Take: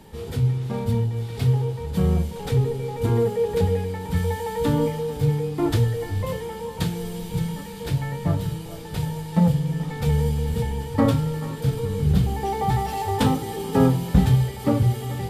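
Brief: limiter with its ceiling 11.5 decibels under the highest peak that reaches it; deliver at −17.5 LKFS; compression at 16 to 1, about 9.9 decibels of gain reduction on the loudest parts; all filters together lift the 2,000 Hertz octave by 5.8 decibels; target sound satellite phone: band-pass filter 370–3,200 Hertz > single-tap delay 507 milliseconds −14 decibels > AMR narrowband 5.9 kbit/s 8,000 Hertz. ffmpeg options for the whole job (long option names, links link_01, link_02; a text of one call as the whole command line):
ffmpeg -i in.wav -af "equalizer=frequency=2000:width_type=o:gain=7.5,acompressor=threshold=-21dB:ratio=16,alimiter=limit=-22.5dB:level=0:latency=1,highpass=370,lowpass=3200,aecho=1:1:507:0.2,volume=20dB" -ar 8000 -c:a libopencore_amrnb -b:a 5900 out.amr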